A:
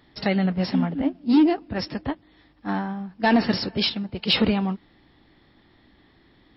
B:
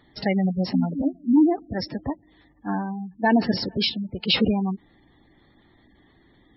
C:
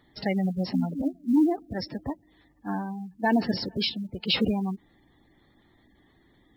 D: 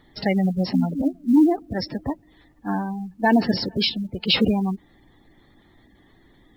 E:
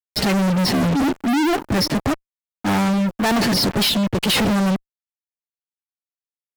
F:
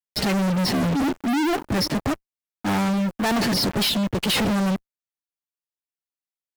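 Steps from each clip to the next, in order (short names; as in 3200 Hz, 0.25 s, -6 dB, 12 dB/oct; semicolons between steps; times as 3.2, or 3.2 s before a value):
spectral gate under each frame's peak -20 dB strong
companded quantiser 8-bit; gain -4 dB
added noise brown -67 dBFS; gain +5.5 dB
fuzz box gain 42 dB, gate -41 dBFS; gain -3.5 dB
block floating point 5-bit; gain -3.5 dB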